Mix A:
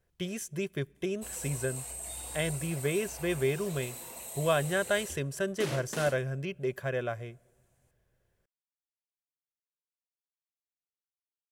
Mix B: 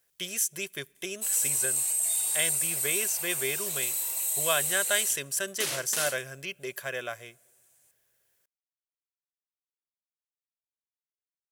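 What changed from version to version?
master: add spectral tilt +4.5 dB per octave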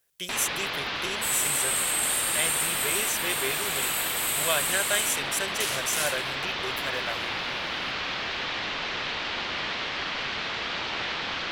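first sound: unmuted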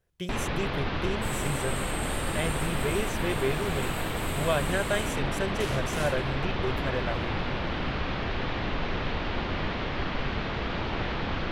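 master: add spectral tilt −4.5 dB per octave

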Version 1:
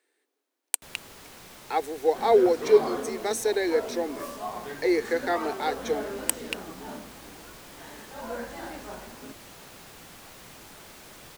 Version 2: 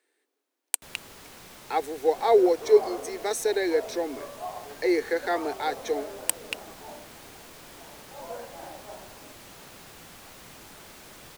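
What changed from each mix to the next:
second sound: add resonant band-pass 680 Hz, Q 1.8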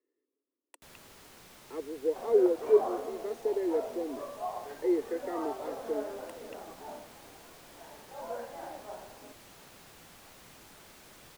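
speech: add moving average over 57 samples
first sound −6.5 dB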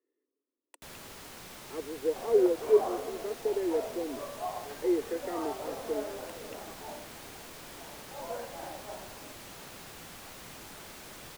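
first sound +7.0 dB

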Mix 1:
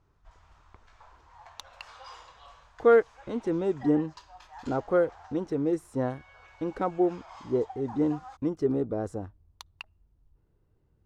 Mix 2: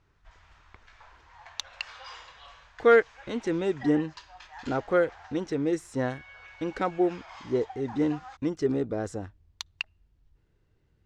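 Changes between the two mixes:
background: add high-shelf EQ 4,700 Hz −11.5 dB
master: add flat-topped bell 3,500 Hz +10 dB 2.6 octaves

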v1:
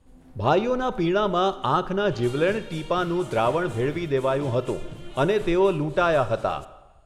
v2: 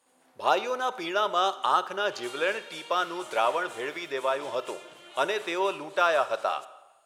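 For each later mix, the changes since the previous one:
speech: remove high-frequency loss of the air 61 metres
master: add high-pass filter 690 Hz 12 dB per octave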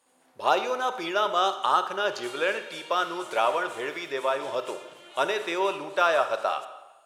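speech: send +6.0 dB

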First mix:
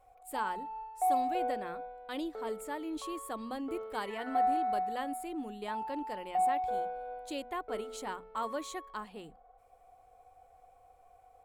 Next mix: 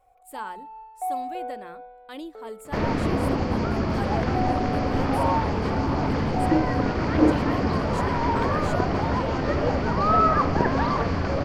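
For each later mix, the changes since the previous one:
second sound: unmuted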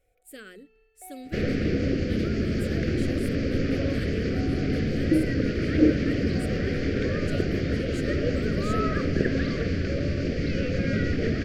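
second sound: entry −1.40 s
master: add Chebyshev band-stop filter 470–1,800 Hz, order 2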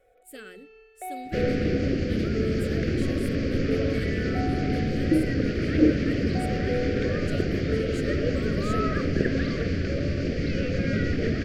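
first sound +12.0 dB

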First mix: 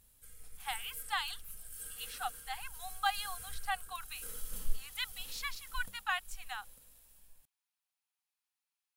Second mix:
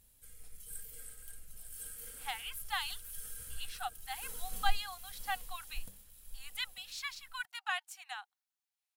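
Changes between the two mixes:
speech: entry +1.60 s
master: add parametric band 1,200 Hz −3.5 dB 0.74 octaves

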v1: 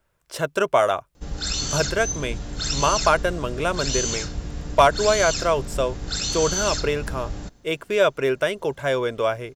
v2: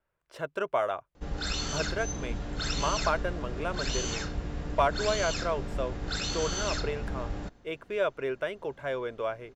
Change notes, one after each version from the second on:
speech −9.5 dB
master: add bass and treble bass −4 dB, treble −13 dB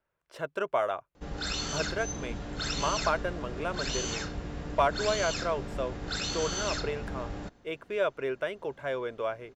master: add low-shelf EQ 61 Hz −8 dB

